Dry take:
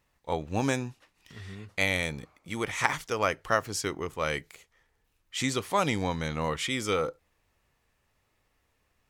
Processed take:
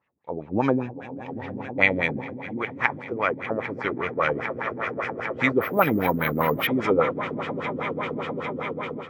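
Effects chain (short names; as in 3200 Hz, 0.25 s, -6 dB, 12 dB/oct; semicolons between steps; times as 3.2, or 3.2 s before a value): HPF 130 Hz 12 dB/oct; swelling echo 0.16 s, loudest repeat 8, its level -17 dB; AGC gain up to 10 dB; LFO low-pass sine 5 Hz 260–2500 Hz; 5.61–6.67 careless resampling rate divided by 3×, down filtered, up hold; gain -4 dB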